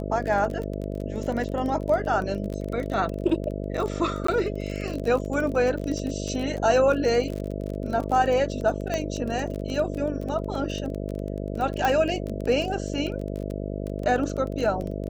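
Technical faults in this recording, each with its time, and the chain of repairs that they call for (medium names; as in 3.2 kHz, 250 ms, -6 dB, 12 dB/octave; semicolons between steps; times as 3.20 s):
buzz 50 Hz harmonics 13 -31 dBFS
crackle 23 per s -29 dBFS
4.27–4.28 s: dropout 14 ms
8.94 s: pop -14 dBFS
11.85 s: pop -12 dBFS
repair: de-click; de-hum 50 Hz, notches 13; interpolate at 4.27 s, 14 ms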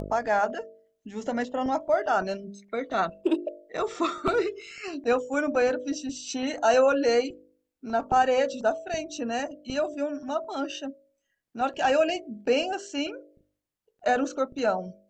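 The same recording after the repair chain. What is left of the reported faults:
nothing left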